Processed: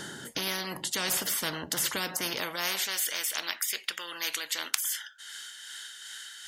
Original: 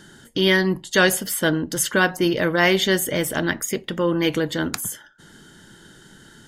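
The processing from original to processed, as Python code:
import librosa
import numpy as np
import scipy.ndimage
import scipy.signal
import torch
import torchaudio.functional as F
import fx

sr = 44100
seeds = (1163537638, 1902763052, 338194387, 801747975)

y = x * (1.0 - 0.42 / 2.0 + 0.42 / 2.0 * np.cos(2.0 * np.pi * 2.6 * (np.arange(len(x)) / sr)))
y = fx.filter_sweep_highpass(y, sr, from_hz=160.0, to_hz=2400.0, start_s=2.05, end_s=3.02, q=1.3)
y = fx.spectral_comp(y, sr, ratio=4.0)
y = y * librosa.db_to_amplitude(-2.0)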